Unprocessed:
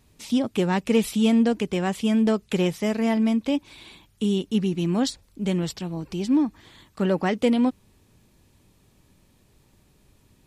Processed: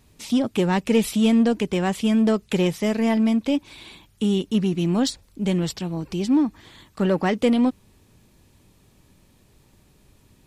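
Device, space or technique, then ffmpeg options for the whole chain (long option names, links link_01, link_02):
parallel distortion: -filter_complex "[0:a]asplit=2[link_01][link_02];[link_02]asoftclip=type=hard:threshold=-23dB,volume=-8dB[link_03];[link_01][link_03]amix=inputs=2:normalize=0"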